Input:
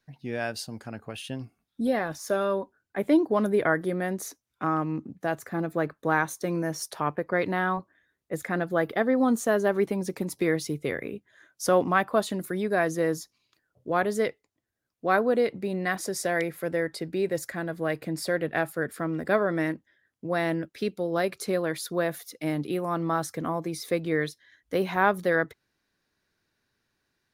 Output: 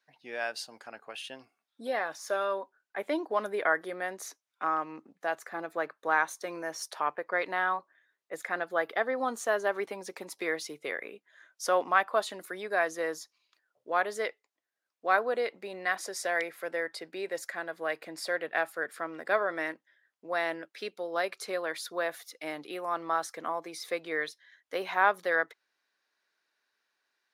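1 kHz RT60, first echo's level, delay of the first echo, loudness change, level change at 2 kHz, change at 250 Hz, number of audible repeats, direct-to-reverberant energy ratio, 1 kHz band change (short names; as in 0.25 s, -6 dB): none, none, none, -4.5 dB, -0.5 dB, -14.5 dB, none, none, -1.5 dB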